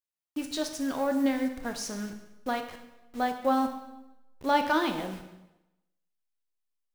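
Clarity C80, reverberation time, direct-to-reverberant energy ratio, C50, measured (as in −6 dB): 10.0 dB, 0.95 s, 5.5 dB, 8.0 dB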